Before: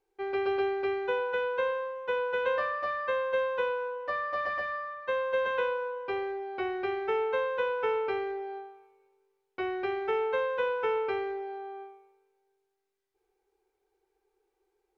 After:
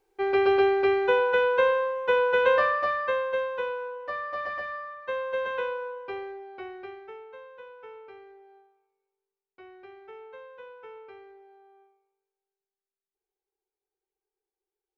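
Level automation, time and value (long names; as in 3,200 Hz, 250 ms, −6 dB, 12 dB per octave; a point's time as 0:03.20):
0:02.68 +7.5 dB
0:03.51 −1 dB
0:05.91 −1 dB
0:06.85 −9 dB
0:07.24 −16.5 dB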